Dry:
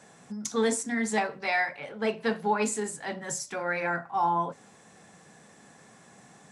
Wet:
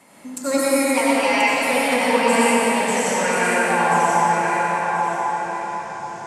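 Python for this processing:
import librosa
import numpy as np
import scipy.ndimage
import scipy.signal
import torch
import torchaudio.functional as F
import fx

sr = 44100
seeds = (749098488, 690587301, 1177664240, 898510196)

y = fx.speed_glide(x, sr, from_pct=124, to_pct=84)
y = fx.echo_thinned(y, sr, ms=1033, feedback_pct=24, hz=370.0, wet_db=-5.0)
y = fx.rev_freeverb(y, sr, rt60_s=4.7, hf_ratio=0.8, predelay_ms=50, drr_db=-9.0)
y = y * librosa.db_to_amplitude(2.0)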